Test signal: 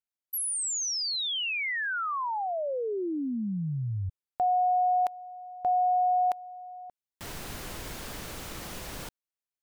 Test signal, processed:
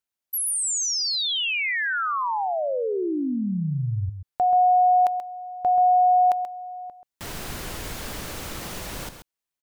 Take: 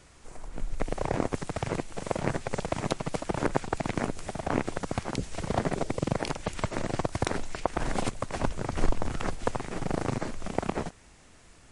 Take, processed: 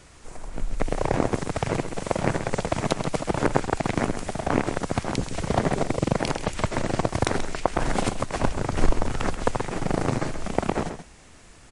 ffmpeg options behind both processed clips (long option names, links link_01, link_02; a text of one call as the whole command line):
ffmpeg -i in.wav -af "aecho=1:1:132:0.335,volume=5dB" out.wav